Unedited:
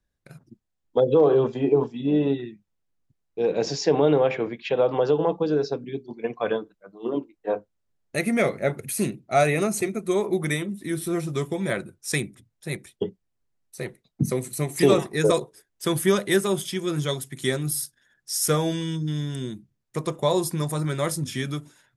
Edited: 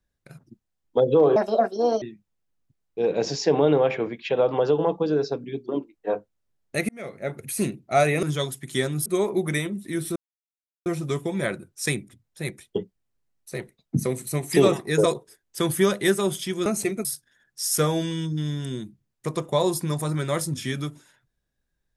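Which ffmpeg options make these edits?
-filter_complex "[0:a]asplit=10[a][b][c][d][e][f][g][h][i][j];[a]atrim=end=1.364[k];[b]atrim=start=1.36:end=2.42,asetpts=PTS-STARTPTS,asetrate=71001,aresample=44100[l];[c]atrim=start=2.416:end=6.092[m];[d]atrim=start=7.088:end=8.29,asetpts=PTS-STARTPTS,afade=t=out:st=1.198:d=0.004:c=hsin[n];[e]atrim=start=8.29:end=9.632,asetpts=PTS-STARTPTS,afade=t=in:d=0.74[o];[f]atrim=start=16.918:end=17.752[p];[g]atrim=start=10.018:end=11.12,asetpts=PTS-STARTPTS,afade=t=out:st=1.098:d=0.004:c=hsin,apad=pad_dur=0.7[q];[h]atrim=start=11.12:end=16.922,asetpts=PTS-STARTPTS,afade=t=in:d=0.004:c=hsin[r];[i]atrim=start=9.628:end=10.022[s];[j]atrim=start=17.748[t];[k][l]acrossfade=d=0.004:c1=hsin:c2=hsin[u];[u][m]acrossfade=d=0.004:c1=hsin:c2=hsin[v];[n][o]concat=n=2:v=0:a=1[w];[v][w]acrossfade=d=0.004:c1=hsin:c2=hsin[x];[x][p]acrossfade=d=0.004:c1=hsin:c2=hsin[y];[q][r]concat=n=2:v=0:a=1[z];[y][z]acrossfade=d=0.004:c1=hsin:c2=hsin[aa];[aa][s]acrossfade=d=0.004:c1=hsin:c2=hsin[ab];[ab][t]acrossfade=d=0.004:c1=hsin:c2=hsin"

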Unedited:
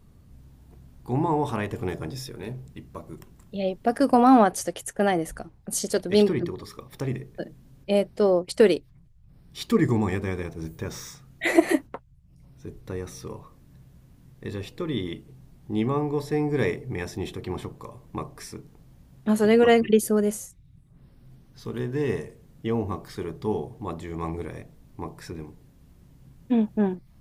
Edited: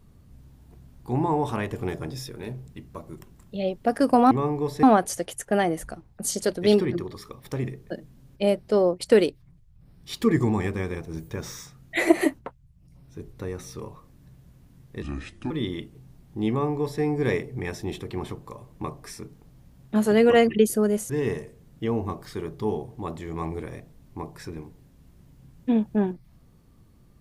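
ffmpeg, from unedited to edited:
-filter_complex "[0:a]asplit=6[a][b][c][d][e][f];[a]atrim=end=4.312[g];[b]atrim=start=15.828:end=16.352[h];[c]atrim=start=4.308:end=14.504[i];[d]atrim=start=14.5:end=14.84,asetpts=PTS-STARTPTS,asetrate=30870,aresample=44100[j];[e]atrim=start=14.836:end=20.432[k];[f]atrim=start=21.918[l];[g][h]acrossfade=d=0.004:c1=hsin:c2=hsin[m];[m][i]acrossfade=d=0.004:c1=hsin:c2=hsin[n];[n][j]acrossfade=d=0.004:c1=hsin:c2=hsin[o];[o][k]acrossfade=d=0.004:c1=hsin:c2=hsin[p];[p][l]acrossfade=d=0.004:c1=hsin:c2=hsin"

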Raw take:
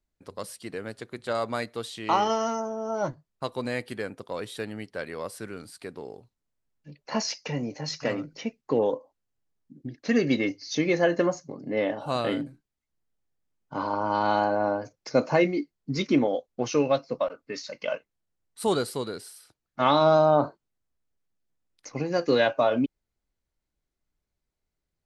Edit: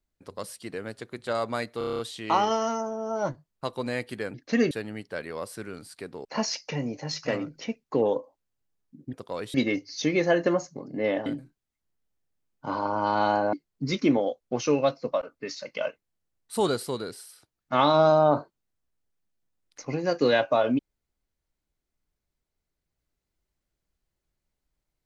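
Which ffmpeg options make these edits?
-filter_complex "[0:a]asplit=15[a][b][c][d][e][f][g][h][i][j][k][l][m][n][o];[a]atrim=end=1.812[p];[b]atrim=start=1.778:end=1.812[q];[c]atrim=start=1.778:end=1.812[r];[d]atrim=start=1.778:end=1.812[s];[e]atrim=start=1.778:end=1.812[t];[f]atrim=start=1.778:end=1.812[u];[g]atrim=start=1.778:end=1.812[v];[h]atrim=start=1.778:end=4.132[w];[i]atrim=start=9.898:end=10.272[x];[j]atrim=start=4.538:end=6.082[y];[k]atrim=start=7.018:end=9.902[z];[l]atrim=start=4.128:end=4.542[aa];[m]atrim=start=10.268:end=11.992[ab];[n]atrim=start=12.338:end=14.612[ac];[o]atrim=start=15.598[ad];[p][q]acrossfade=d=0.004:c1=hsin:c2=hsin[ae];[ae][r]acrossfade=d=0.004:c1=hsin:c2=hsin[af];[af][s]acrossfade=d=0.004:c1=hsin:c2=hsin[ag];[ag][t]acrossfade=d=0.004:c1=hsin:c2=hsin[ah];[ah][u]acrossfade=d=0.004:c1=hsin:c2=hsin[ai];[ai][v]acrossfade=d=0.004:c1=hsin:c2=hsin[aj];[aj][w]acrossfade=d=0.004:c1=hsin:c2=hsin[ak];[ak][x]acrossfade=d=0.004:c1=hsin:c2=hsin[al];[al][y]acrossfade=d=0.004:c1=hsin:c2=hsin[am];[am][z]acrossfade=d=0.004:c1=hsin:c2=hsin[an];[an][aa]acrossfade=d=0.004:c1=hsin:c2=hsin[ao];[ao][ab]acrossfade=d=0.004:c1=hsin:c2=hsin[ap];[ap][ac]acrossfade=d=0.004:c1=hsin:c2=hsin[aq];[aq][ad]acrossfade=d=0.004:c1=hsin:c2=hsin"

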